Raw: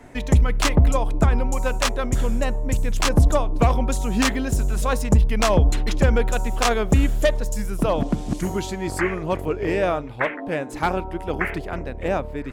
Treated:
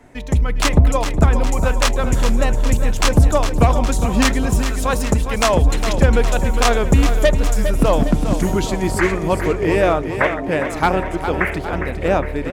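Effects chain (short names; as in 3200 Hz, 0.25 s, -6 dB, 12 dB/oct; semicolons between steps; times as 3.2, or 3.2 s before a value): 4.58–5.62 low shelf 220 Hz -8.5 dB; AGC; on a send: feedback echo 0.408 s, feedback 55%, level -9 dB; on the sum: gain -2.5 dB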